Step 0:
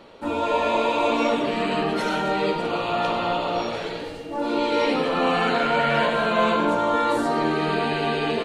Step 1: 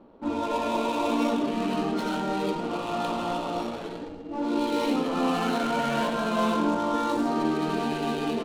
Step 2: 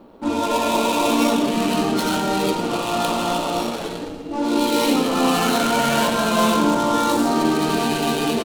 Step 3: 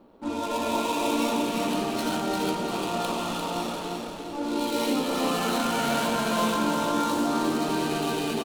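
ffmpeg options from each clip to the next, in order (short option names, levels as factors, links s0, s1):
-af "equalizer=f=125:t=o:w=1:g=-7,equalizer=f=250:t=o:w=1:g=6,equalizer=f=500:t=o:w=1:g=-6,equalizer=f=2000:t=o:w=1:g=-10,equalizer=f=8000:t=o:w=1:g=6,adynamicsmooth=sensitivity=7.5:basefreq=930,volume=0.794"
-filter_complex "[0:a]asplit=8[s0][s1][s2][s3][s4][s5][s6][s7];[s1]adelay=118,afreqshift=-30,volume=0.168[s8];[s2]adelay=236,afreqshift=-60,volume=0.107[s9];[s3]adelay=354,afreqshift=-90,volume=0.0684[s10];[s4]adelay=472,afreqshift=-120,volume=0.0442[s11];[s5]adelay=590,afreqshift=-150,volume=0.0282[s12];[s6]adelay=708,afreqshift=-180,volume=0.018[s13];[s7]adelay=826,afreqshift=-210,volume=0.0115[s14];[s0][s8][s9][s10][s11][s12][s13][s14]amix=inputs=8:normalize=0,crystalizer=i=2.5:c=0,volume=2.11"
-af "aecho=1:1:347|694|1041|1388|1735|2082:0.596|0.268|0.121|0.0543|0.0244|0.011,volume=0.376"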